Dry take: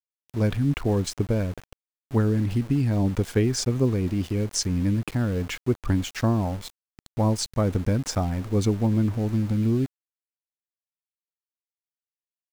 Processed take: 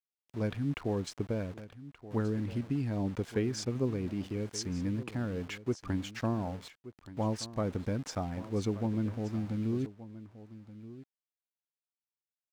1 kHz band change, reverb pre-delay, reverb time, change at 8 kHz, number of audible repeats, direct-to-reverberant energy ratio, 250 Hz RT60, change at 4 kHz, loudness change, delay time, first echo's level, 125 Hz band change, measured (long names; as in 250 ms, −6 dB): −7.5 dB, no reverb audible, no reverb audible, −12.0 dB, 1, no reverb audible, no reverb audible, −10.0 dB, −10.0 dB, 1,176 ms, −15.5 dB, −11.5 dB